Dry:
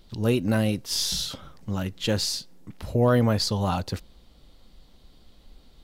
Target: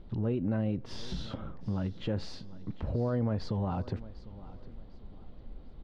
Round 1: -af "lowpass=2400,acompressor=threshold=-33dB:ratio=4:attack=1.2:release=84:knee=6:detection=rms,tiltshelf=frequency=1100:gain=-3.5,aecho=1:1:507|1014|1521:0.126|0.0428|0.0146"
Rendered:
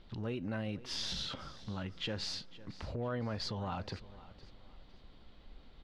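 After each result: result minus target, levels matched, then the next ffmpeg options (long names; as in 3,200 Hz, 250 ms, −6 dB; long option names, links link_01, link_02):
echo 243 ms early; 1,000 Hz band +3.5 dB
-af "lowpass=2400,acompressor=threshold=-33dB:ratio=4:attack=1.2:release=84:knee=6:detection=rms,tiltshelf=frequency=1100:gain=-3.5,aecho=1:1:750|1500|2250:0.126|0.0428|0.0146"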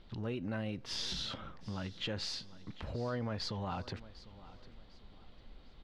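1,000 Hz band +3.5 dB
-af "lowpass=2400,acompressor=threshold=-33dB:ratio=4:attack=1.2:release=84:knee=6:detection=rms,tiltshelf=frequency=1100:gain=5.5,aecho=1:1:750|1500|2250:0.126|0.0428|0.0146"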